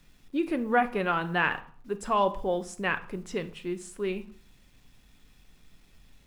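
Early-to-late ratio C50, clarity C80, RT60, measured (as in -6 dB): 15.5 dB, 19.0 dB, 0.50 s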